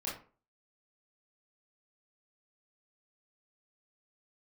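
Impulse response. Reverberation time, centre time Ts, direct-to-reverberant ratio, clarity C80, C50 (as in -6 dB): 0.40 s, 37 ms, -7.0 dB, 11.5 dB, 5.5 dB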